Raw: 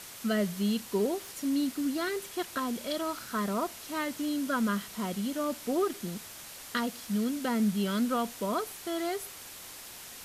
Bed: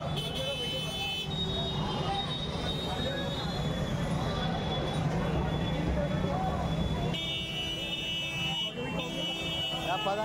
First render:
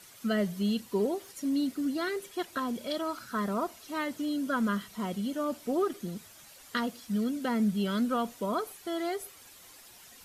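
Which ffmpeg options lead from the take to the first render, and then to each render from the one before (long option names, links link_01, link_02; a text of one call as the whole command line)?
ffmpeg -i in.wav -af "afftdn=noise_reduction=10:noise_floor=-46" out.wav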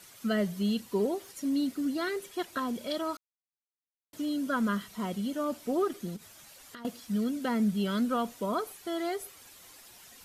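ffmpeg -i in.wav -filter_complex "[0:a]asettb=1/sr,asplit=3[link_01][link_02][link_03];[link_01]atrim=end=6.164[link_04];[link_02]atrim=start=6.16:end=6.85,asetpts=PTS-STARTPTS,afade=type=in:duration=0.004:curve=qsin,afade=type=out:start_time=0.686:duration=0.004:curve=qsin,acompressor=threshold=-44dB:ratio=6:attack=3.2:release=140:knee=1:detection=peak[link_05];[link_03]atrim=start=6.846[link_06];[link_04][link_05]acrossfade=duration=0.004:curve1=hsin:curve2=qsin[link_07];[link_07][link_06]acrossfade=duration=0.004:curve1=qsin:curve2=hsin,asplit=3[link_08][link_09][link_10];[link_08]atrim=end=3.17,asetpts=PTS-STARTPTS,afade=type=out:start_time=3.166:duration=0.004:curve=hsin[link_11];[link_09]atrim=start=3.17:end=4.13,asetpts=PTS-STARTPTS,volume=0[link_12];[link_10]atrim=start=4.13,asetpts=PTS-STARTPTS,afade=type=in:duration=0.004:curve=hsin[link_13];[link_11][link_12][link_13]concat=n=3:v=0:a=1" out.wav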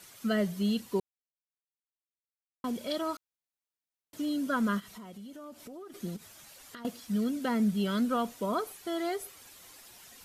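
ffmpeg -i in.wav -filter_complex "[0:a]asplit=3[link_01][link_02][link_03];[link_01]afade=type=out:start_time=4.79:duration=0.02[link_04];[link_02]acompressor=threshold=-44dB:ratio=6:attack=3.2:release=140:knee=1:detection=peak,afade=type=in:start_time=4.79:duration=0.02,afade=type=out:start_time=5.93:duration=0.02[link_05];[link_03]afade=type=in:start_time=5.93:duration=0.02[link_06];[link_04][link_05][link_06]amix=inputs=3:normalize=0,asplit=3[link_07][link_08][link_09];[link_07]atrim=end=1,asetpts=PTS-STARTPTS,afade=type=out:start_time=0.996:duration=0.004:curve=hsin[link_10];[link_08]atrim=start=1:end=2.64,asetpts=PTS-STARTPTS,volume=0[link_11];[link_09]atrim=start=2.64,asetpts=PTS-STARTPTS,afade=type=in:duration=0.004:curve=hsin[link_12];[link_10][link_11][link_12]concat=n=3:v=0:a=1" out.wav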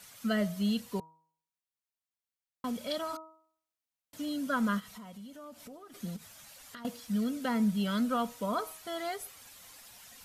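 ffmpeg -i in.wav -af "equalizer=frequency=360:width_type=o:width=0.35:gain=-13,bandreject=frequency=159.3:width_type=h:width=4,bandreject=frequency=318.6:width_type=h:width=4,bandreject=frequency=477.9:width_type=h:width=4,bandreject=frequency=637.2:width_type=h:width=4,bandreject=frequency=796.5:width_type=h:width=4,bandreject=frequency=955.8:width_type=h:width=4,bandreject=frequency=1115.1:width_type=h:width=4,bandreject=frequency=1274.4:width_type=h:width=4" out.wav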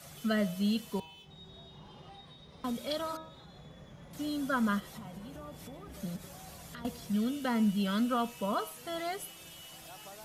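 ffmpeg -i in.wav -i bed.wav -filter_complex "[1:a]volume=-20dB[link_01];[0:a][link_01]amix=inputs=2:normalize=0" out.wav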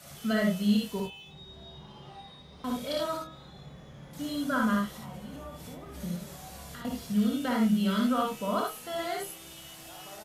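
ffmpeg -i in.wav -filter_complex "[0:a]asplit=2[link_01][link_02];[link_02]adelay=28,volume=-8dB[link_03];[link_01][link_03]amix=inputs=2:normalize=0,asplit=2[link_04][link_05];[link_05]aecho=0:1:58|73:0.708|0.596[link_06];[link_04][link_06]amix=inputs=2:normalize=0" out.wav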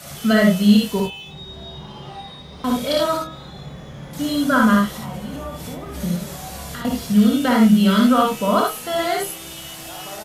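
ffmpeg -i in.wav -af "volume=12dB" out.wav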